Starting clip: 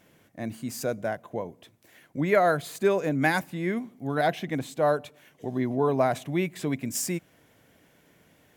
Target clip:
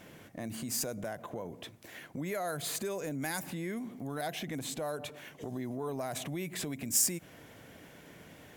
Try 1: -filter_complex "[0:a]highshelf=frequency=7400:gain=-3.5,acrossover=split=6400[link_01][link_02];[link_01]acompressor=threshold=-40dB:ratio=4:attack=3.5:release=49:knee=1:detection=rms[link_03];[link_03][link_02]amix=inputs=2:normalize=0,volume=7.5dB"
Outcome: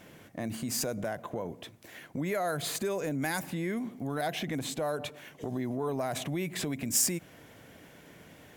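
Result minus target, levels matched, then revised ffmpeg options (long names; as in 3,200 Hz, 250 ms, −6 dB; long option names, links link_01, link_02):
downward compressor: peak gain reduction −4.5 dB
-filter_complex "[0:a]highshelf=frequency=7400:gain=-3.5,acrossover=split=6400[link_01][link_02];[link_01]acompressor=threshold=-46dB:ratio=4:attack=3.5:release=49:knee=1:detection=rms[link_03];[link_03][link_02]amix=inputs=2:normalize=0,volume=7.5dB"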